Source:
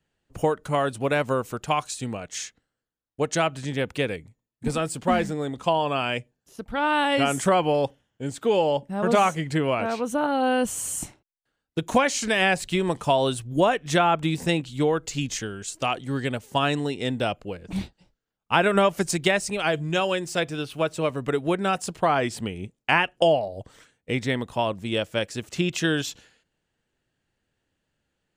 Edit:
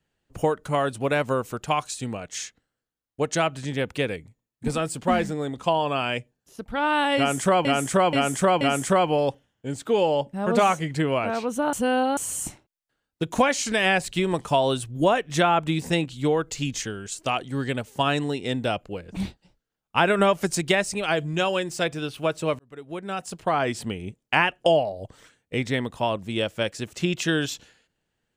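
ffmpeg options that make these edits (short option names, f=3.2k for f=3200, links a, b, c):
-filter_complex "[0:a]asplit=7[a][b][c][d][e][f][g];[a]atrim=end=7.652[h];[b]atrim=start=7.168:end=7.652[i];[c]atrim=start=7.168:end=7.652[j];[d]atrim=start=7.168:end=10.292[k];[e]atrim=start=10.288:end=10.732,asetpts=PTS-STARTPTS,areverse[l];[f]atrim=start=10.728:end=21.15,asetpts=PTS-STARTPTS,afade=t=out:st=10.418:d=0.004:c=hsin[m];[g]atrim=start=21.15,asetpts=PTS-STARTPTS,afade=t=in:d=1.17[n];[h][i]acrossfade=d=0.004:c1=hsin:c2=hsin[o];[o][j]acrossfade=d=0.004:c1=hsin:c2=hsin[p];[p][k]acrossfade=d=0.004:c1=hsin:c2=hsin[q];[q][l]acrossfade=d=0.004:c1=hsin:c2=hsin[r];[m][n]concat=n=2:v=0:a=1[s];[r][s]acrossfade=d=0.004:c1=hsin:c2=hsin"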